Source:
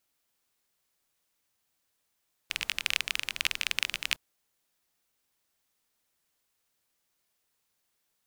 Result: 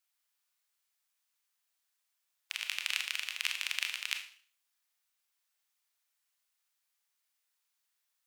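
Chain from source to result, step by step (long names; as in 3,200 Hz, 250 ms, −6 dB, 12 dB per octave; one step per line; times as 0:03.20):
high-pass filter 1,000 Hz 12 dB per octave
four-comb reverb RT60 0.47 s, combs from 26 ms, DRR 5 dB
level −5 dB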